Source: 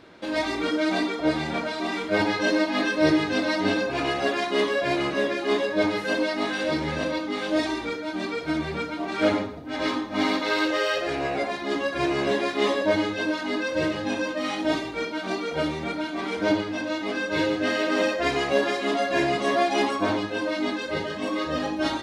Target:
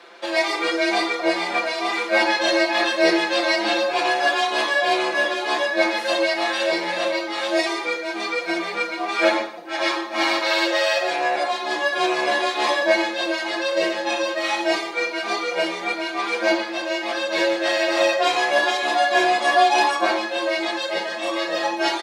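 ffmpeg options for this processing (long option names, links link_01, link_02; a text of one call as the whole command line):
ffmpeg -i in.wav -af "highpass=550,aecho=1:1:6:0.92,afreqshift=24,volume=5dB" out.wav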